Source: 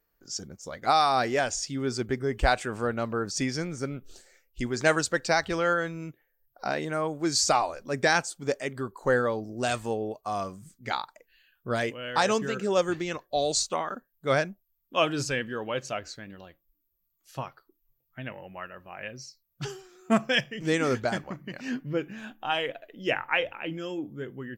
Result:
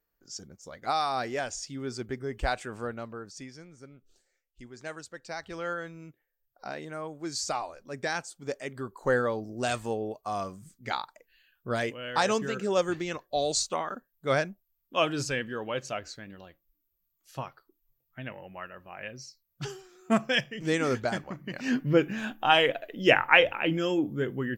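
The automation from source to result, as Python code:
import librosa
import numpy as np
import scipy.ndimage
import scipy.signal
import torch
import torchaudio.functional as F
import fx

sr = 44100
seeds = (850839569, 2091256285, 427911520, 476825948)

y = fx.gain(x, sr, db=fx.line((2.84, -6.0), (3.55, -17.0), (5.16, -17.0), (5.65, -8.5), (8.17, -8.5), (9.08, -1.5), (21.31, -1.5), (21.88, 7.0)))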